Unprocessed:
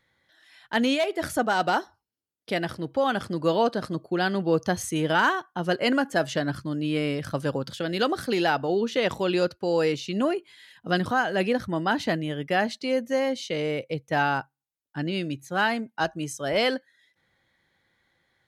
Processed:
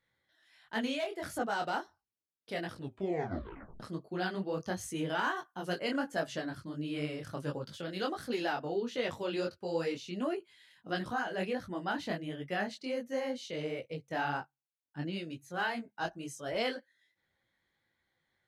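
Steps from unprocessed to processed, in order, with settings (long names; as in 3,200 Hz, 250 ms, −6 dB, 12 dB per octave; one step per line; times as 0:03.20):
0:02.72: tape stop 1.08 s
0:05.36–0:05.79: high-shelf EQ 5,900 Hz +10 dB
micro pitch shift up and down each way 50 cents
level −6.5 dB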